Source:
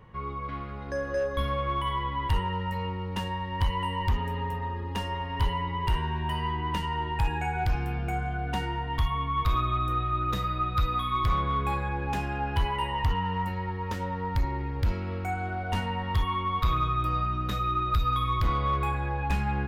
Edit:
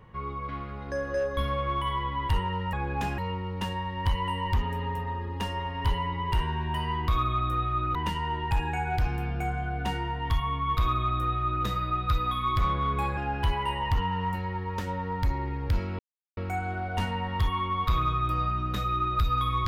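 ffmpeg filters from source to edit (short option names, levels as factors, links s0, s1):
-filter_complex "[0:a]asplit=7[s0][s1][s2][s3][s4][s5][s6];[s0]atrim=end=2.732[s7];[s1]atrim=start=11.848:end=12.302[s8];[s2]atrim=start=2.728:end=6.632[s9];[s3]atrim=start=9.458:end=10.332[s10];[s4]atrim=start=6.628:end=11.852[s11];[s5]atrim=start=12.298:end=15.12,asetpts=PTS-STARTPTS,afade=t=out:st=2.818:d=0.004:c=hsin,apad=pad_dur=0.38[s12];[s6]atrim=start=15.12,asetpts=PTS-STARTPTS,afade=t=in:d=0.004:c=hsin[s13];[s7][s8]acrossfade=d=0.004:c1=hsin:c2=hsin[s14];[s14][s9]acrossfade=d=0.004:c1=hsin:c2=hsin[s15];[s15][s10]acrossfade=d=0.004:c1=hsin:c2=hsin[s16];[s16][s11]acrossfade=d=0.004:c1=hsin:c2=hsin[s17];[s12][s13]concat=n=2:v=0:a=1[s18];[s17][s18]acrossfade=d=0.004:c1=hsin:c2=hsin"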